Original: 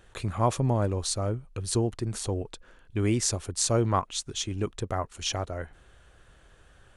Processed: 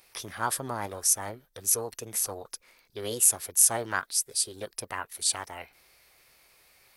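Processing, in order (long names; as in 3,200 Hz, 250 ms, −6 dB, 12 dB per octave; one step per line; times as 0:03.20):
RIAA equalisation recording
formants moved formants +6 semitones
level −3 dB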